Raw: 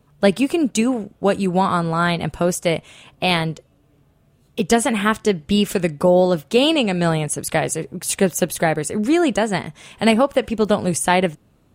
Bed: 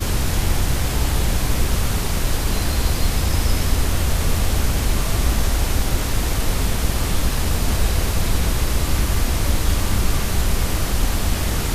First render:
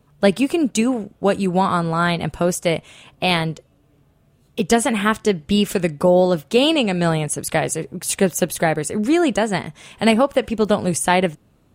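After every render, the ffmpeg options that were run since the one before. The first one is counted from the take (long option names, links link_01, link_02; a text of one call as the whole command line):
ffmpeg -i in.wav -af anull out.wav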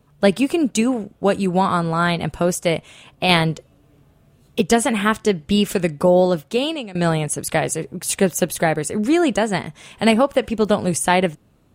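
ffmpeg -i in.wav -filter_complex "[0:a]asplit=4[link_01][link_02][link_03][link_04];[link_01]atrim=end=3.292[link_05];[link_02]atrim=start=3.288:end=4.612,asetpts=PTS-STARTPTS,volume=3.5dB[link_06];[link_03]atrim=start=4.608:end=6.95,asetpts=PTS-STARTPTS,afade=type=out:start_time=1.652:duration=0.69:silence=0.112202[link_07];[link_04]atrim=start=6.95,asetpts=PTS-STARTPTS,afade=type=in:duration=0.004:curve=hsin:silence=0.112202[link_08];[link_05][link_06]acrossfade=duration=0.004:curve1=hsin:curve2=hsin[link_09];[link_07][link_08]concat=n=2:v=0:a=1[link_10];[link_09][link_10]acrossfade=duration=0.004:curve1=hsin:curve2=hsin" out.wav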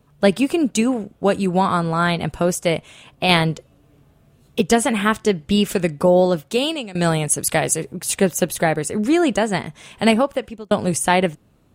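ffmpeg -i in.wav -filter_complex "[0:a]asettb=1/sr,asplit=3[link_01][link_02][link_03];[link_01]atrim=end=6.514[link_04];[link_02]atrim=start=6.51:end=7.93,asetpts=PTS-STARTPTS,afade=type=in:duration=0.004:curve=qsin,afade=type=out:start_time=1.416:duration=0.004:curve=qsin,highshelf=frequency=4400:gain=7[link_05];[link_03]atrim=start=7.926[link_06];[link_04][link_05]acrossfade=duration=0.004:curve1=hsin:curve2=qsin[link_07];[link_07][link_06]acrossfade=duration=0.004:curve1=qsin:curve2=hsin,asplit=2[link_08][link_09];[link_08]atrim=end=10.71,asetpts=PTS-STARTPTS,afade=type=out:start_time=10.11:duration=0.6[link_10];[link_09]atrim=start=10.71,asetpts=PTS-STARTPTS,afade=type=in:duration=0.004:curve=hsin[link_11];[link_10][link_11]concat=n=2:v=0:a=1" out.wav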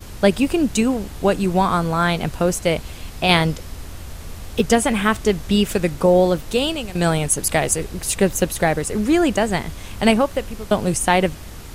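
ffmpeg -i in.wav -i bed.wav -filter_complex "[1:a]volume=-15dB[link_01];[0:a][link_01]amix=inputs=2:normalize=0" out.wav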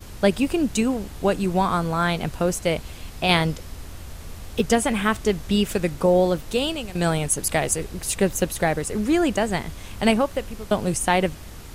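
ffmpeg -i in.wav -af "volume=-3.5dB" out.wav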